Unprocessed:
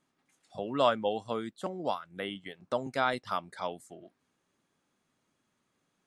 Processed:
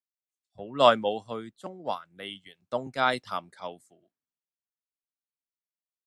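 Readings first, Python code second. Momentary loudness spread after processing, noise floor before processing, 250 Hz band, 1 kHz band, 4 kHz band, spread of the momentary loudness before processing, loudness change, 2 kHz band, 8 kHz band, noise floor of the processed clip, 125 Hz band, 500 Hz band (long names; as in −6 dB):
21 LU, −79 dBFS, +0.5 dB, +4.5 dB, +6.0 dB, 14 LU, +5.5 dB, +4.5 dB, +2.0 dB, below −85 dBFS, +1.0 dB, +4.0 dB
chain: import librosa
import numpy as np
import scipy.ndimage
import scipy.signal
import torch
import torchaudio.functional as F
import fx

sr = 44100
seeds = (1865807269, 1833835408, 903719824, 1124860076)

y = fx.band_widen(x, sr, depth_pct=100)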